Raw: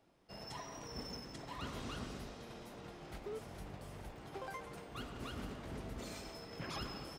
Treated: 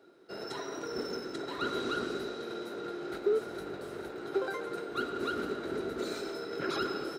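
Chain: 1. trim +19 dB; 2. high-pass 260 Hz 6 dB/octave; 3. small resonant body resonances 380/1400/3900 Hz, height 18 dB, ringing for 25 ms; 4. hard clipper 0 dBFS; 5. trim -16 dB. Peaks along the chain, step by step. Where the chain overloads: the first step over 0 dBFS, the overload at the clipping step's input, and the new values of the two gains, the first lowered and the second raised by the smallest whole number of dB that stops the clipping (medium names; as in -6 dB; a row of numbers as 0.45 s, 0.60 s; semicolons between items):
-11.5 dBFS, -14.0 dBFS, -2.5 dBFS, -2.5 dBFS, -18.5 dBFS; nothing clips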